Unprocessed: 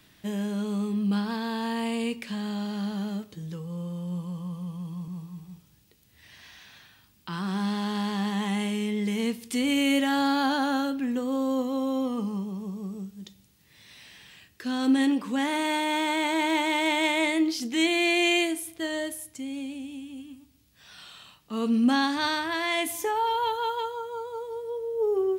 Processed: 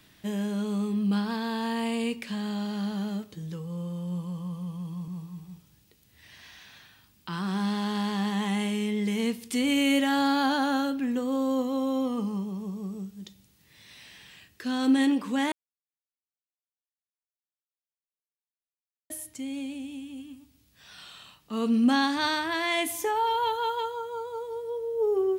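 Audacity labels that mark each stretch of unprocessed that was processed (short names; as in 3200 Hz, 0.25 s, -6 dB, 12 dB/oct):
15.520000	19.100000	mute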